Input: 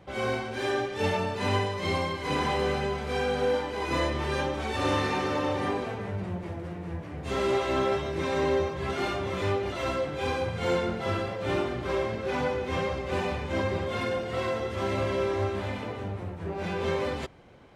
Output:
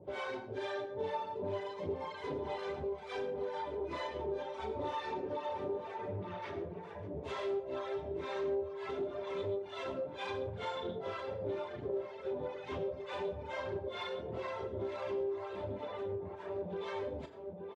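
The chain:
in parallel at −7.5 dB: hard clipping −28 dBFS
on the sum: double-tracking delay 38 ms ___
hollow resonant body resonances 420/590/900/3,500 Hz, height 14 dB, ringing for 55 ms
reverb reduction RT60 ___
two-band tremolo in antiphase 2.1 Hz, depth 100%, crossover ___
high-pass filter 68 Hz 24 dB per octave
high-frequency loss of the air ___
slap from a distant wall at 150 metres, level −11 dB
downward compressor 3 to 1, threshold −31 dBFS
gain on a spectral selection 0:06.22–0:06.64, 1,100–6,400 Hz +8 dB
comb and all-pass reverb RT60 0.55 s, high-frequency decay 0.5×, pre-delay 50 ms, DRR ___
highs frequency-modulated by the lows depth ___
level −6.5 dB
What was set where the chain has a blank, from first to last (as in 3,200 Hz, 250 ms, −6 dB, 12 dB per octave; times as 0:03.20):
−8 dB, 1 s, 670 Hz, 67 metres, 11 dB, 0.17 ms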